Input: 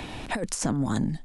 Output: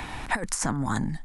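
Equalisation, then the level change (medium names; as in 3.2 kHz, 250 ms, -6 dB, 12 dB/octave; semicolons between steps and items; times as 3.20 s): bass shelf 110 Hz +8.5 dB; high-order bell 1.3 kHz +9.5 dB; treble shelf 5.1 kHz +9 dB; -4.5 dB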